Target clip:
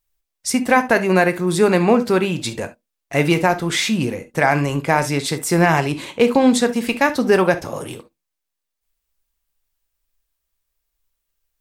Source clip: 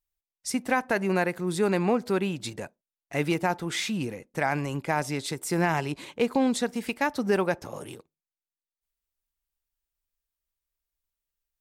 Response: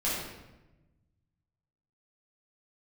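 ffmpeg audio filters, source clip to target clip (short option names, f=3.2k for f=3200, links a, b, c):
-filter_complex "[0:a]asplit=2[a][b];[1:a]atrim=start_sample=2205,atrim=end_sample=3528[c];[b][c]afir=irnorm=-1:irlink=0,volume=-14dB[d];[a][d]amix=inputs=2:normalize=0,volume=8.5dB"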